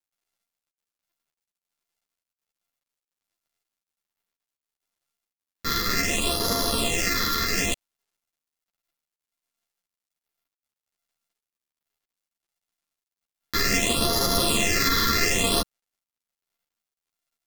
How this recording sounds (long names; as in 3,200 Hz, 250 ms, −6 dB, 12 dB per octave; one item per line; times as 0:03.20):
a buzz of ramps at a fixed pitch in blocks of 64 samples
phaser sweep stages 6, 0.65 Hz, lowest notch 710–2,500 Hz
a quantiser's noise floor 12 bits, dither none
a shimmering, thickened sound